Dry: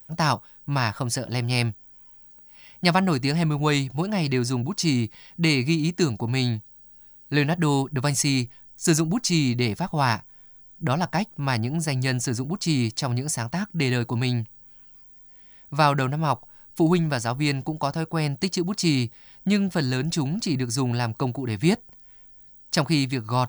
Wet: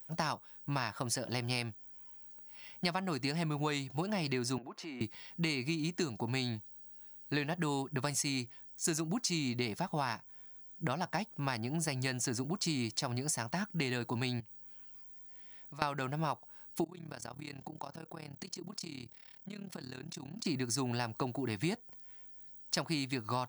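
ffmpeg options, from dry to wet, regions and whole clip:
-filter_complex "[0:a]asettb=1/sr,asplit=3[s0][s1][s2];[s0]atrim=end=4.584[s3];[s1]atrim=start=4.58:end=5.01,asetpts=PTS-STARTPTS,afade=t=in:d=0.004:c=qsin,afade=t=out:st=0.426:d=0.004:c=qsin,acrossover=split=290 2700:gain=0.0708 1 0.0794[s4][s5][s6];[s4][s5][s6]amix=inputs=3:normalize=0,acompressor=threshold=0.0112:ratio=3:attack=3.2:release=140:knee=1:detection=peak[s7];[s2]atrim=start=5.006[s8];[s3][s7]acrossfade=d=0.004:c1=hsin:c2=qsin[s9];[s9][s8]acrossfade=d=0.004:c1=qsin:c2=hsin,asettb=1/sr,asplit=3[s10][s11][s12];[s10]atrim=end=14.404[s13];[s11]atrim=start=14.4:end=15.82,asetpts=PTS-STARTPTS,afade=t=in:d=0.004:c=qsin,afade=t=out:st=1.416:d=0.004:c=qsin,highpass=79,acompressor=threshold=0.01:ratio=5:attack=3.2:release=140:knee=1:detection=peak[s14];[s12]atrim=start=15.816[s15];[s13][s14]acrossfade=d=0.004:c1=hsin:c2=qsin[s16];[s16][s15]acrossfade=d=0.004:c1=qsin:c2=hsin,asettb=1/sr,asplit=3[s17][s18][s19];[s17]atrim=end=16.844[s20];[s18]atrim=start=16.84:end=20.46,asetpts=PTS-STARTPTS,afade=t=in:d=0.004:c=qsin,afade=t=out:st=3.616:d=0.004:c=qsin,acompressor=threshold=0.0282:ratio=20:attack=3.2:release=140:knee=1:detection=peak,tremolo=f=36:d=0.889[s21];[s19]atrim=start=20.456[s22];[s20][s21]acrossfade=d=0.004:c1=hsin:c2=qsin[s23];[s23][s22]acrossfade=d=0.004:c1=qsin:c2=hsin,highpass=f=240:p=1,acompressor=threshold=0.0398:ratio=6,volume=0.708"

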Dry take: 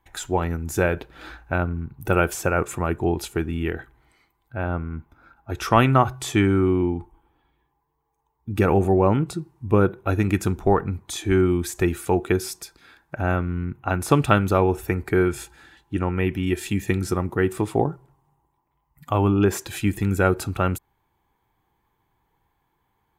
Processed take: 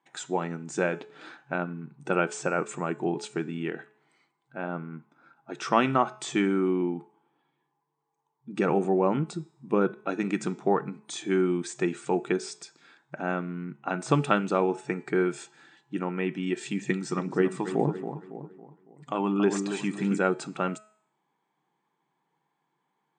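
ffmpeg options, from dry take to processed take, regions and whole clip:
-filter_complex "[0:a]asettb=1/sr,asplit=3[s0][s1][s2];[s0]atrim=end=16.794[s3];[s1]atrim=start=16.79:end=20.18,asetpts=PTS-STARTPTS,afade=t=in:d=0.004:c=qsin,afade=t=out:st=3.386:d=0.004:c=qsin,asplit=2[s4][s5];[s5]adelay=278,lowpass=f=2400:p=1,volume=0.398,asplit=2[s6][s7];[s7]adelay=278,lowpass=f=2400:p=1,volume=0.44,asplit=2[s8][s9];[s9]adelay=278,lowpass=f=2400:p=1,volume=0.44,asplit=2[s10][s11];[s11]adelay=278,lowpass=f=2400:p=1,volume=0.44,asplit=2[s12][s13];[s13]adelay=278,lowpass=f=2400:p=1,volume=0.44[s14];[s4][s6][s8][s10][s12][s14]amix=inputs=6:normalize=0,atrim=end_sample=149499,aphaser=in_gain=1:out_gain=1:delay=1.2:decay=0.38:speed=1.8:type=triangular[s15];[s2]atrim=start=20.176[s16];[s3][s15]acrossfade=d=0.004:c1=hsin:c2=qsin[s17];[s17][s16]acrossfade=d=0.004:c1=qsin:c2=hsin,afftfilt=real='re*between(b*sr/4096,130,8900)':imag='im*between(b*sr/4096,130,8900)':win_size=4096:overlap=0.75,bandreject=f=213.8:t=h:w=4,bandreject=f=427.6:t=h:w=4,bandreject=f=641.4:t=h:w=4,bandreject=f=855.2:t=h:w=4,bandreject=f=1069:t=h:w=4,bandreject=f=1282.8:t=h:w=4,bandreject=f=1496.6:t=h:w=4,bandreject=f=1710.4:t=h:w=4,bandreject=f=1924.2:t=h:w=4,bandreject=f=2138:t=h:w=4,bandreject=f=2351.8:t=h:w=4,bandreject=f=2565.6:t=h:w=4,bandreject=f=2779.4:t=h:w=4,bandreject=f=2993.2:t=h:w=4,bandreject=f=3207:t=h:w=4,bandreject=f=3420.8:t=h:w=4,bandreject=f=3634.6:t=h:w=4,bandreject=f=3848.4:t=h:w=4,bandreject=f=4062.2:t=h:w=4,bandreject=f=4276:t=h:w=4,bandreject=f=4489.8:t=h:w=4,bandreject=f=4703.6:t=h:w=4,bandreject=f=4917.4:t=h:w=4,bandreject=f=5131.2:t=h:w=4,bandreject=f=5345:t=h:w=4,bandreject=f=5558.8:t=h:w=4,bandreject=f=5772.6:t=h:w=4,bandreject=f=5986.4:t=h:w=4,bandreject=f=6200.2:t=h:w=4,bandreject=f=6414:t=h:w=4,bandreject=f=6627.8:t=h:w=4,bandreject=f=6841.6:t=h:w=4,bandreject=f=7055.4:t=h:w=4,bandreject=f=7269.2:t=h:w=4,bandreject=f=7483:t=h:w=4,bandreject=f=7696.8:t=h:w=4,bandreject=f=7910.6:t=h:w=4,bandreject=f=8124.4:t=h:w=4,volume=0.562"

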